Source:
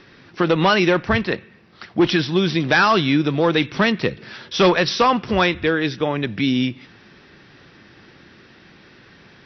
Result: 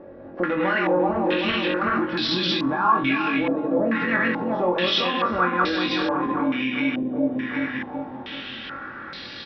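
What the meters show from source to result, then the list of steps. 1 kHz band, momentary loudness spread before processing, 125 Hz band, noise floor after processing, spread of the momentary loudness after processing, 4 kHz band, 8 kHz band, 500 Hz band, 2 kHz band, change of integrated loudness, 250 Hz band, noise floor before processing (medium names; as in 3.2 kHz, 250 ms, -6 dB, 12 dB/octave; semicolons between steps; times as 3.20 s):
-1.5 dB, 9 LU, -10.0 dB, -38 dBFS, 13 LU, -2.0 dB, no reading, -4.0 dB, -2.5 dB, -4.0 dB, -2.5 dB, -49 dBFS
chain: backward echo that repeats 190 ms, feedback 70%, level -3 dB; bass shelf 360 Hz -5 dB; comb 3.6 ms, depth 44%; dynamic bell 260 Hz, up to +6 dB, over -32 dBFS, Q 1.3; compression 6:1, threshold -26 dBFS, peak gain reduction 17.5 dB; peak limiter -22.5 dBFS, peak gain reduction 7 dB; flutter echo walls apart 3.8 m, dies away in 0.27 s; step-sequenced low-pass 2.3 Hz 610–4200 Hz; trim +4 dB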